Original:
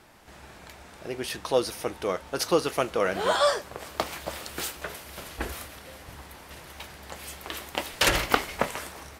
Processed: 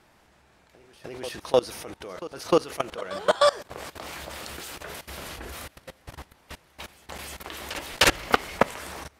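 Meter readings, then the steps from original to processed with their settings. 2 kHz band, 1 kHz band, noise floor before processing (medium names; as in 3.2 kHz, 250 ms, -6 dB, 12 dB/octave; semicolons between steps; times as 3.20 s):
+0.5 dB, +1.0 dB, -49 dBFS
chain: level held to a coarse grid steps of 22 dB; treble shelf 11 kHz -5.5 dB; reverse echo 306 ms -17 dB; trim +6 dB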